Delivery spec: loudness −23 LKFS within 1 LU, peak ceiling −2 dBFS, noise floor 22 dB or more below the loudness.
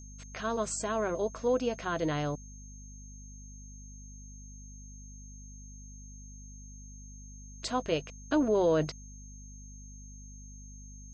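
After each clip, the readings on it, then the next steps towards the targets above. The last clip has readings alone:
mains hum 50 Hz; hum harmonics up to 250 Hz; level of the hum −46 dBFS; interfering tone 6,400 Hz; level of the tone −52 dBFS; integrated loudness −31.5 LKFS; sample peak −17.0 dBFS; target loudness −23.0 LKFS
→ hum removal 50 Hz, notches 5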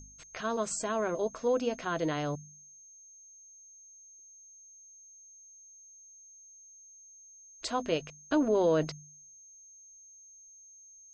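mains hum none found; interfering tone 6,400 Hz; level of the tone −52 dBFS
→ notch filter 6,400 Hz, Q 30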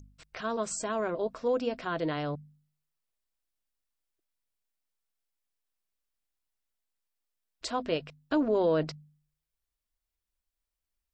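interfering tone none found; integrated loudness −31.5 LKFS; sample peak −17.0 dBFS; target loudness −23.0 LKFS
→ level +8.5 dB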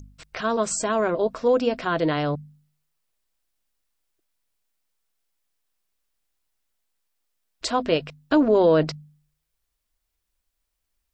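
integrated loudness −23.0 LKFS; sample peak −8.5 dBFS; background noise floor −79 dBFS

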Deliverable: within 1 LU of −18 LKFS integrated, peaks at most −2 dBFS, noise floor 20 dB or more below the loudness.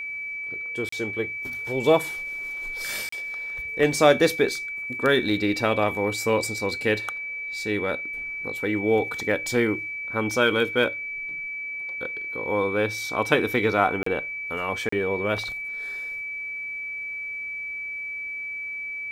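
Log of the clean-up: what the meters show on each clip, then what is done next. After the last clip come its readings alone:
number of dropouts 4; longest dropout 34 ms; interfering tone 2,300 Hz; level of the tone −30 dBFS; integrated loudness −25.5 LKFS; sample peak −4.5 dBFS; target loudness −18.0 LKFS
→ repair the gap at 0:00.89/0:03.09/0:14.03/0:14.89, 34 ms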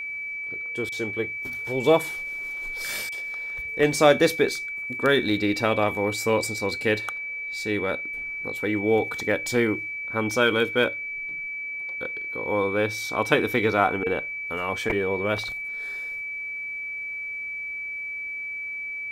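number of dropouts 0; interfering tone 2,300 Hz; level of the tone −30 dBFS
→ notch filter 2,300 Hz, Q 30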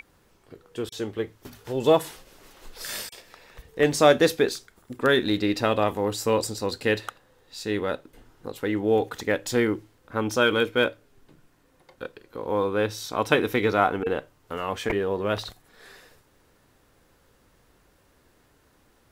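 interfering tone none found; integrated loudness −25.0 LKFS; sample peak −5.0 dBFS; target loudness −18.0 LKFS
→ level +7 dB
brickwall limiter −2 dBFS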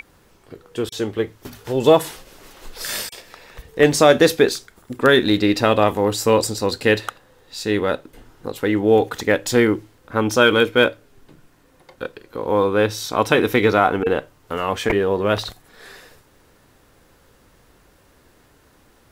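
integrated loudness −18.5 LKFS; sample peak −2.0 dBFS; background noise floor −56 dBFS

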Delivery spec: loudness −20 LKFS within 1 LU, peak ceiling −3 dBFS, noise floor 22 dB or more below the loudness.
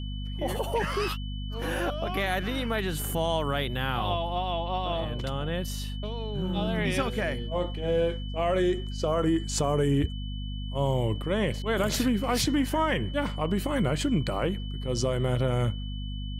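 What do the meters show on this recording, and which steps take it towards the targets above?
mains hum 50 Hz; hum harmonics up to 250 Hz; level of the hum −31 dBFS; interfering tone 3,000 Hz; level of the tone −44 dBFS; integrated loudness −28.5 LKFS; sample peak −14.0 dBFS; target loudness −20.0 LKFS
→ hum removal 50 Hz, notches 5
notch filter 3,000 Hz, Q 30
level +8.5 dB

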